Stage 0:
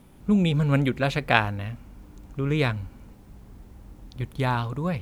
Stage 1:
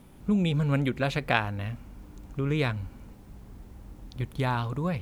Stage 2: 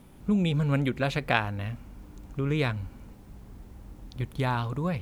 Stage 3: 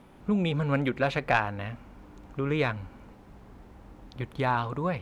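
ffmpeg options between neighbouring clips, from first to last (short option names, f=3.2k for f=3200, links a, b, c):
-af "acompressor=threshold=-28dB:ratio=1.5"
-af anull
-filter_complex "[0:a]asplit=2[a][b];[b]highpass=f=720:p=1,volume=12dB,asoftclip=type=tanh:threshold=-6dB[c];[a][c]amix=inputs=2:normalize=0,lowpass=f=1.4k:p=1,volume=-6dB"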